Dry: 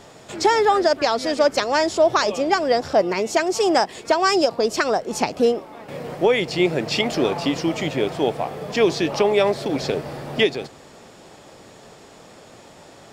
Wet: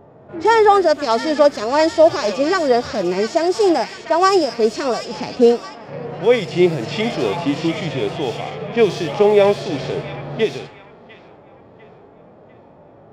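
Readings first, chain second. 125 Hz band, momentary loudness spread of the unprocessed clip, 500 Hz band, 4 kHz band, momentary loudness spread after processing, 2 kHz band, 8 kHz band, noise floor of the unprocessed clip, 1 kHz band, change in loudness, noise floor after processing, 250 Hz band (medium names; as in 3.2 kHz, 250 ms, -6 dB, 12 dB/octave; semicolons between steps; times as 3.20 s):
+4.5 dB, 8 LU, +4.0 dB, -1.0 dB, 11 LU, 0.0 dB, -2.5 dB, -46 dBFS, +2.5 dB, +3.0 dB, -46 dBFS, +3.0 dB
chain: feedback echo behind a high-pass 698 ms, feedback 56%, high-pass 1.9 kHz, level -7 dB; level-controlled noise filter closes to 730 Hz, open at -16.5 dBFS; harmonic-percussive split percussive -17 dB; trim +6 dB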